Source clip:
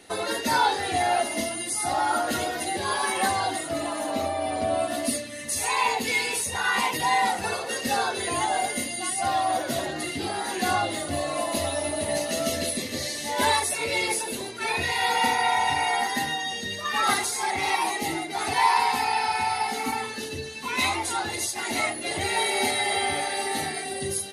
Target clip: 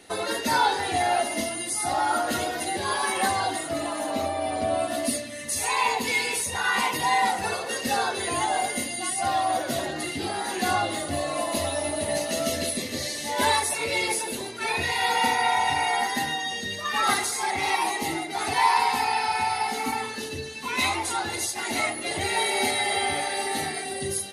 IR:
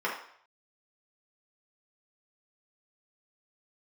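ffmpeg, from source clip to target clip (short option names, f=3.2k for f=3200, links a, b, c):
-filter_complex "[0:a]asplit=2[a][b];[1:a]atrim=start_sample=2205,adelay=132[c];[b][c]afir=irnorm=-1:irlink=0,volume=-27dB[d];[a][d]amix=inputs=2:normalize=0"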